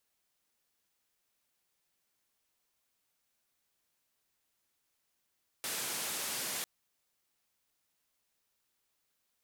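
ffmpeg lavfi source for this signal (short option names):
-f lavfi -i "anoisesrc=c=white:d=1:r=44100:seed=1,highpass=f=140,lowpass=f=13000,volume=-30.3dB"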